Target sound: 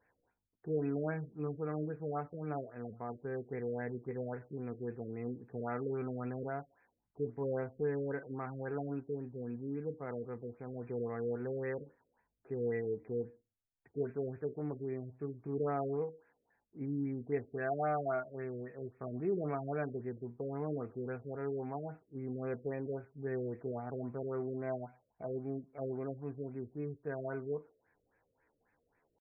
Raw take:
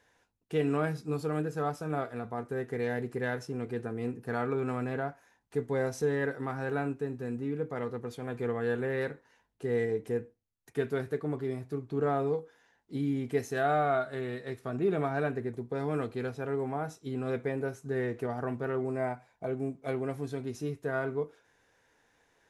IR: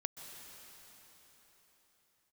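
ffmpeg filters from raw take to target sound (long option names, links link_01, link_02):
-af "atempo=0.77,afftfilt=real='re*lt(b*sr/1024,600*pow(2700/600,0.5+0.5*sin(2*PI*3.7*pts/sr)))':imag='im*lt(b*sr/1024,600*pow(2700/600,0.5+0.5*sin(2*PI*3.7*pts/sr)))':win_size=1024:overlap=0.75,volume=-6dB"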